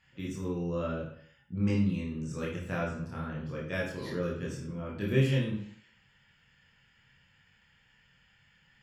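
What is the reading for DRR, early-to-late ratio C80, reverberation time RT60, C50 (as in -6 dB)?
-4.5 dB, 8.5 dB, 0.60 s, 3.5 dB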